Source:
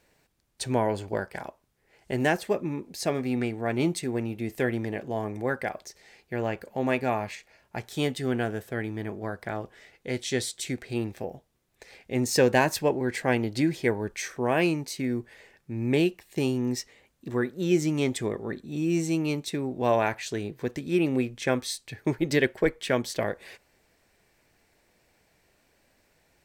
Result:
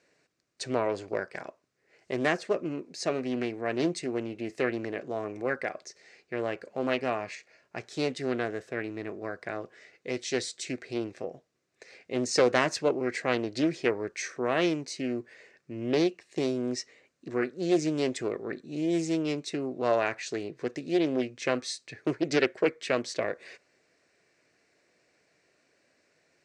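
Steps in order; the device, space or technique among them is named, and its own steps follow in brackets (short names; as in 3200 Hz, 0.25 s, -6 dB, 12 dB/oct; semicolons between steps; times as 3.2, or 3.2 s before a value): full-range speaker at full volume (Doppler distortion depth 0.38 ms; speaker cabinet 190–7300 Hz, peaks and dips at 210 Hz -6 dB, 870 Hz -10 dB, 3300 Hz -7 dB)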